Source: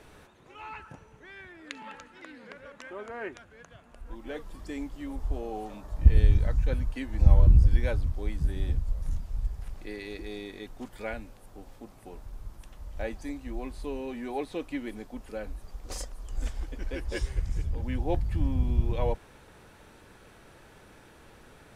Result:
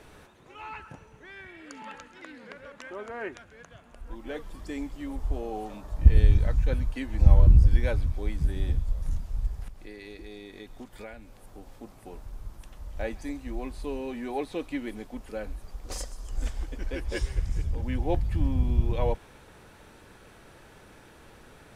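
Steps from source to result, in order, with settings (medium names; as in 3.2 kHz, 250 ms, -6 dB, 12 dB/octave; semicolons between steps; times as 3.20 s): 1.48–1.78 s: spectral replace 1.6–4.4 kHz; 9.68–11.75 s: compression, threshold -41 dBFS, peak gain reduction 11 dB; feedback echo behind a high-pass 133 ms, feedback 56%, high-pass 2.9 kHz, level -15 dB; trim +1.5 dB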